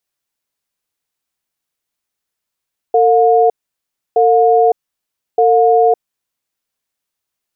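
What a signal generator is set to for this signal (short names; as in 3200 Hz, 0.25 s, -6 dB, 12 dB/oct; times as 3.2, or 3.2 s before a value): cadence 453 Hz, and 716 Hz, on 0.56 s, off 0.66 s, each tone -10 dBFS 3.51 s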